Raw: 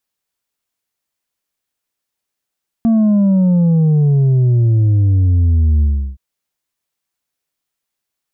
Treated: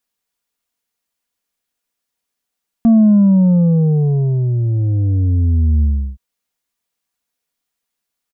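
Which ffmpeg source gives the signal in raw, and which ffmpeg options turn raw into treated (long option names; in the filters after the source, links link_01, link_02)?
-f lavfi -i "aevalsrc='0.335*clip((3.32-t)/0.35,0,1)*tanh(1.58*sin(2*PI*230*3.32/log(65/230)*(exp(log(65/230)*t/3.32)-1)))/tanh(1.58)':duration=3.32:sample_rate=44100"
-af "aecho=1:1:4.2:0.39"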